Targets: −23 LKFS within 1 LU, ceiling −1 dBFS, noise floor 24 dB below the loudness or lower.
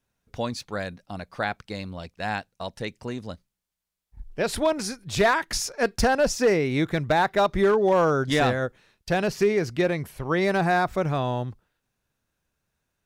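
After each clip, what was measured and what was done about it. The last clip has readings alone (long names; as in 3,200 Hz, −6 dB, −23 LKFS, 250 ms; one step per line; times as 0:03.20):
share of clipped samples 0.4%; peaks flattened at −13.5 dBFS; integrated loudness −24.5 LKFS; sample peak −13.5 dBFS; target loudness −23.0 LKFS
→ clipped peaks rebuilt −13.5 dBFS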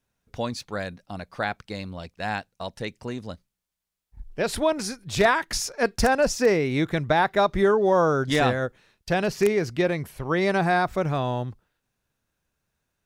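share of clipped samples 0.0%; integrated loudness −24.0 LKFS; sample peak −4.5 dBFS; target loudness −23.0 LKFS
→ level +1 dB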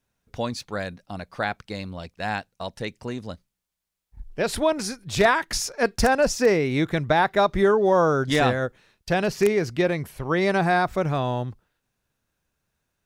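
integrated loudness −23.5 LKFS; sample peak −3.5 dBFS; background noise floor −80 dBFS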